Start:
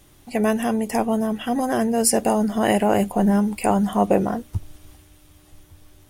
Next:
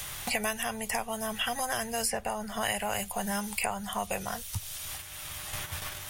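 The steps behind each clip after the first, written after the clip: gate -47 dBFS, range -7 dB; passive tone stack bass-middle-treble 10-0-10; three-band squash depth 100%; gain +2 dB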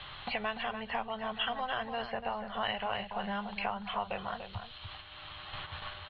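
rippled Chebyshev low-pass 4300 Hz, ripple 6 dB; outdoor echo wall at 50 m, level -8 dB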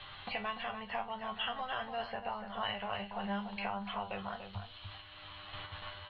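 resonator 99 Hz, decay 0.24 s, harmonics all, mix 80%; gain +3.5 dB

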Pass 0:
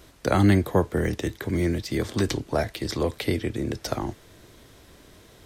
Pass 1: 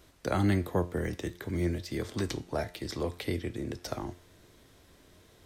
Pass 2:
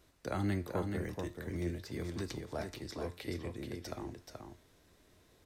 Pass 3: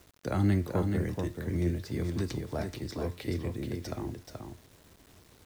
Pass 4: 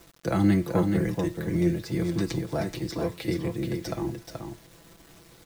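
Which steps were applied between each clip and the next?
resonator 88 Hz, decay 0.47 s, harmonics all, mix 50%; gain -3 dB
notch 3200 Hz, Q 20; on a send: echo 0.429 s -5.5 dB; on the sum: gain -7.5 dB
bell 120 Hz +7 dB 2.9 oct; requantised 10-bit, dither none; gain +2.5 dB
comb 6 ms, depth 69%; gain +4 dB

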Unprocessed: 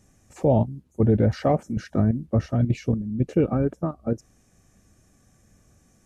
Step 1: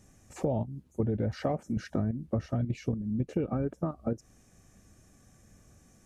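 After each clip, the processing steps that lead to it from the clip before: compressor 6:1, threshold -27 dBFS, peak gain reduction 12 dB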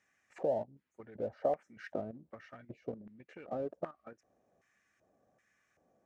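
LFO band-pass square 1.3 Hz 610–1900 Hz; in parallel at -10 dB: crossover distortion -48.5 dBFS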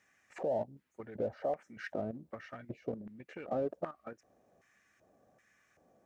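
limiter -30.5 dBFS, peak gain reduction 10 dB; gain +5 dB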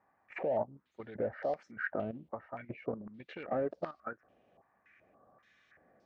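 stepped low-pass 3.5 Hz 910–4700 Hz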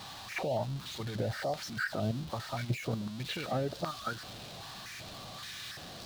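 zero-crossing step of -47.5 dBFS; limiter -27.5 dBFS, peak gain reduction 5.5 dB; graphic EQ 125/250/500/2000/4000 Hz +9/-4/-7/-6/+12 dB; gain +7 dB

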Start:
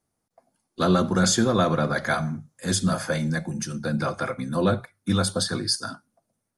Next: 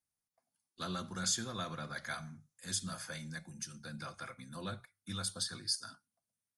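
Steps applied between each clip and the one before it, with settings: passive tone stack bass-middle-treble 5-5-5; gain -3.5 dB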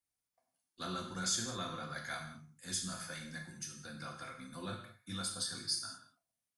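non-linear reverb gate 0.24 s falling, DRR 1 dB; gain -2.5 dB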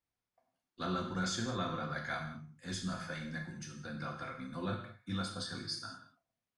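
tape spacing loss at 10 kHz 21 dB; gain +6.5 dB

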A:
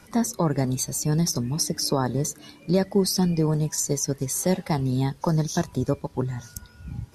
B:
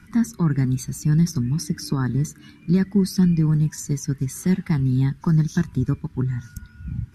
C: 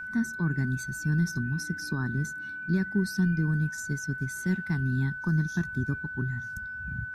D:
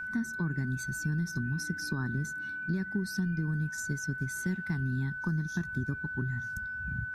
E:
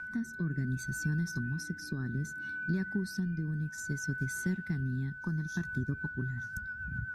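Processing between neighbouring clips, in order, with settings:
EQ curve 210 Hz 0 dB, 380 Hz -9 dB, 540 Hz -27 dB, 1500 Hz -2 dB, 4500 Hz -13 dB; gain +5.5 dB
whine 1500 Hz -27 dBFS; gain -8 dB
compressor, threshold -28 dBFS, peak gain reduction 7 dB
rotary speaker horn 0.65 Hz, later 7.5 Hz, at 5.56

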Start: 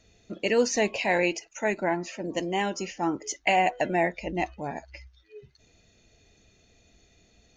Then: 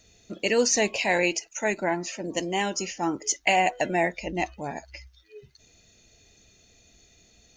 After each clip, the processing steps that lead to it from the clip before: high shelf 4800 Hz +12 dB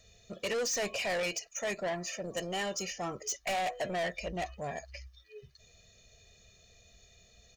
comb 1.7 ms, depth 78%; soft clip -25 dBFS, distortion -7 dB; gain -4.5 dB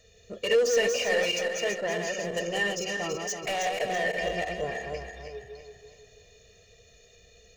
regenerating reverse delay 0.165 s, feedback 63%, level -3.5 dB; small resonant body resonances 460/1800/2800 Hz, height 12 dB, ringing for 40 ms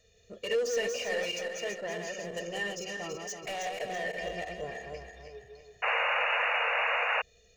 painted sound noise, 5.82–7.22, 450–2900 Hz -22 dBFS; gain -6.5 dB

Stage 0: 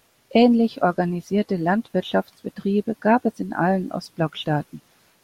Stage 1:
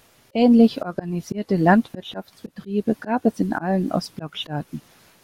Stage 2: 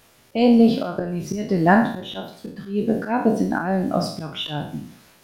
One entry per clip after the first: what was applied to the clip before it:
low shelf 170 Hz +3 dB; auto swell 0.29 s; gain +5 dB
spectral trails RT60 0.55 s; gain -1 dB

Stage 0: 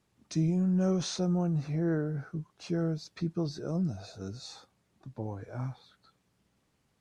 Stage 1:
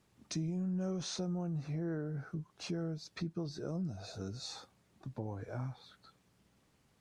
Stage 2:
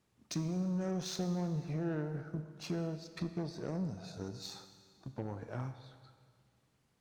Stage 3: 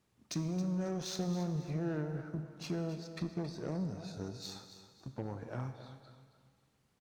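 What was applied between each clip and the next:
compressor 2.5:1, threshold -42 dBFS, peak gain reduction 12 dB; gain +2.5 dB
added harmonics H 7 -23 dB, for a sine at -27 dBFS; Schroeder reverb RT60 1.9 s, combs from 26 ms, DRR 9.5 dB; gain +1 dB
feedback echo 0.272 s, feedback 34%, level -12.5 dB

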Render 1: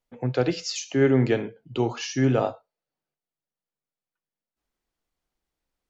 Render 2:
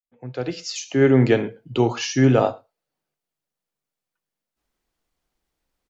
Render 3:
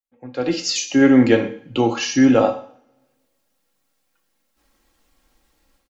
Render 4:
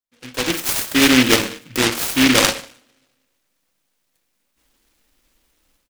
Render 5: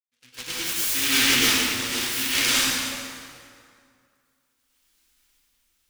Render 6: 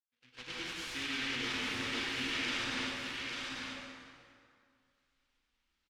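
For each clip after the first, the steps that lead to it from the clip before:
opening faded in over 1.30 s; outdoor echo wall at 19 m, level -28 dB; gain +5.5 dB
comb 3.7 ms, depth 60%; AGC gain up to 15.5 dB; on a send at -7 dB: reverb, pre-delay 3 ms; on the sum: gain -2.5 dB
low shelf 350 Hz -5 dB; noise-modulated delay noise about 2300 Hz, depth 0.36 ms; gain +2 dB
passive tone stack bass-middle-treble 5-5-5; tremolo saw up 0.57 Hz, depth 50%; plate-style reverb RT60 2.3 s, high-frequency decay 0.7×, pre-delay 90 ms, DRR -9.5 dB; gain -1.5 dB
LPF 3400 Hz 12 dB/oct; limiter -20 dBFS, peak gain reduction 9 dB; echo 0.846 s -3.5 dB; gain -8 dB

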